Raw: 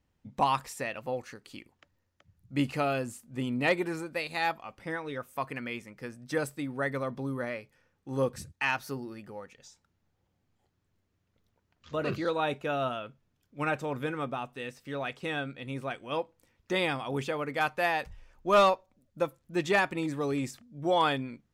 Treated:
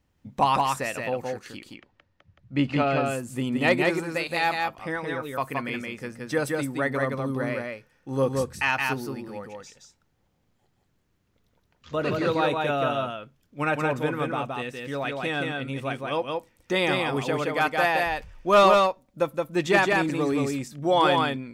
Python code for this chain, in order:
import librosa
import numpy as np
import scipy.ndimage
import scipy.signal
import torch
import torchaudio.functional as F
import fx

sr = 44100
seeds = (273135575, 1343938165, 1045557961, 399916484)

p1 = fx.lowpass(x, sr, hz=4000.0, slope=12, at=(1.58, 3.06))
p2 = p1 + fx.echo_single(p1, sr, ms=171, db=-3.0, dry=0)
y = p2 * 10.0 ** (4.5 / 20.0)